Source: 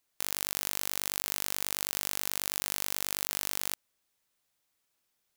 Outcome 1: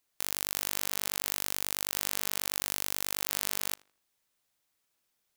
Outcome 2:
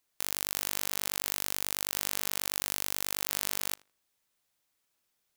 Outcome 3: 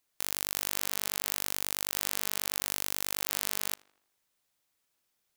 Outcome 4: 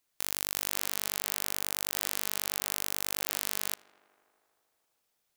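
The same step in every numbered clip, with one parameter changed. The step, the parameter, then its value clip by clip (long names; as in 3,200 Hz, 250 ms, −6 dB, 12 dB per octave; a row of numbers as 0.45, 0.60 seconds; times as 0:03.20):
tape delay, feedback: 33, 20, 55, 88%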